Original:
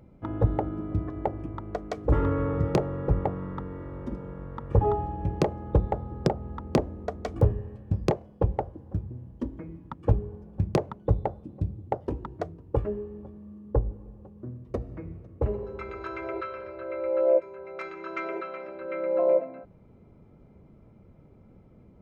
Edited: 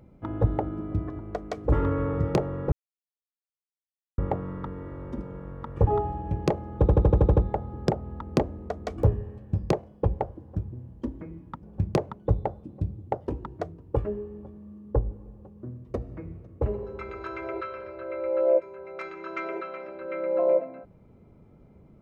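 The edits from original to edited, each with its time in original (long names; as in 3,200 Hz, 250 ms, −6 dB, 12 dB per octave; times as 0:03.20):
0:01.19–0:01.59: remove
0:03.12: splice in silence 1.46 s
0:05.74: stutter 0.08 s, 8 plays
0:10.01–0:10.43: remove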